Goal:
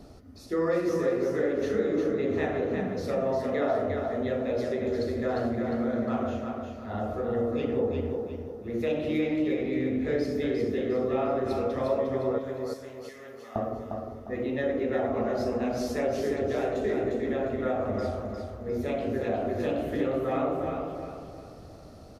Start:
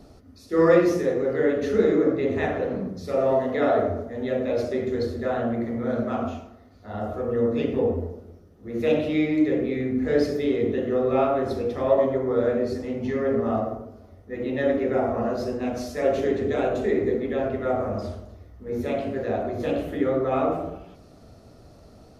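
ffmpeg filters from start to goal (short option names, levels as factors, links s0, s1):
-filter_complex "[0:a]asettb=1/sr,asplit=3[s0][s1][s2];[s0]atrim=end=12.384[s3];[s1]atrim=start=12.38:end=13.56,asetpts=PTS-STARTPTS,afade=t=in:d=0.004:c=qsin,afade=t=out:st=1.176:d=0.004:c=qsin,aderivative[s4];[s2]atrim=start=13.556[s5];[s3][s4]acrossfade=d=0.004:c1=hsin:c2=qsin[s6];[s6][s5]acrossfade=d=0.004:c1=qsin:c2=hsin,acompressor=threshold=0.0398:ratio=2.5,aecho=1:1:354|708|1062|1416|1770:0.562|0.214|0.0812|0.0309|0.0117"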